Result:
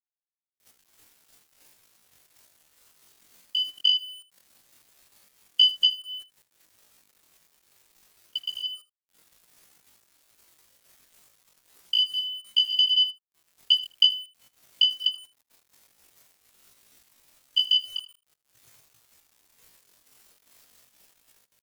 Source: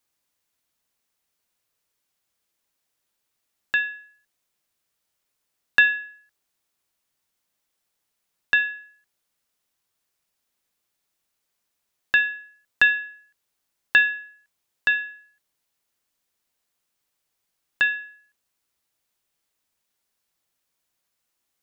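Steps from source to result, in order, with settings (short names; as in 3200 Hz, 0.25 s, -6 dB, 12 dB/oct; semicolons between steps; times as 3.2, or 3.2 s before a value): spectral contrast raised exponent 2.6; recorder AGC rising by 45 dB/s; reverb removal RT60 1.3 s; bell 680 Hz -11.5 dB 1.8 oct; in parallel at 0 dB: limiter -12 dBFS, peak gain reduction 7 dB; on the sum: grains 0.227 s, grains 15/s, spray 0.239 s, pitch spread up and down by 0 st; sample gate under -44 dBFS; pitch shift +10 st; on a send: echo 79 ms -17 dB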